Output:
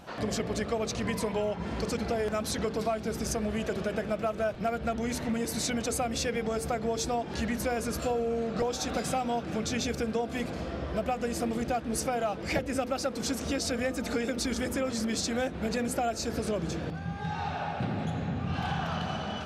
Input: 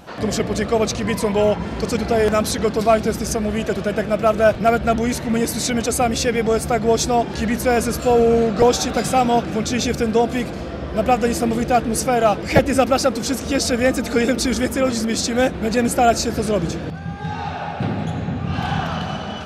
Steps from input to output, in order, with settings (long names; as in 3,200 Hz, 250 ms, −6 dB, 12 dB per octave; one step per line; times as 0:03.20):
high-shelf EQ 12,000 Hz −3.5 dB
mains-hum notches 50/100/150/200/250/300/350/400/450/500 Hz
downward compressor, threshold −21 dBFS, peak gain reduction 11.5 dB
level −6 dB